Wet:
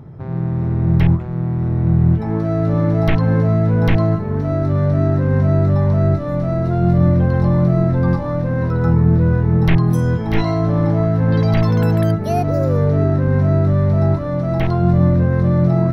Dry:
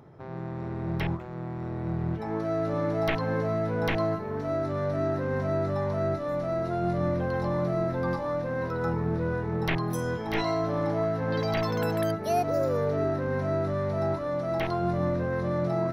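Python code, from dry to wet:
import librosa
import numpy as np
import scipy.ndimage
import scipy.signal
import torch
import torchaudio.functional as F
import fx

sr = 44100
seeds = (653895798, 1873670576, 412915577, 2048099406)

y = fx.bass_treble(x, sr, bass_db=14, treble_db=-3)
y = y * 10.0 ** (5.0 / 20.0)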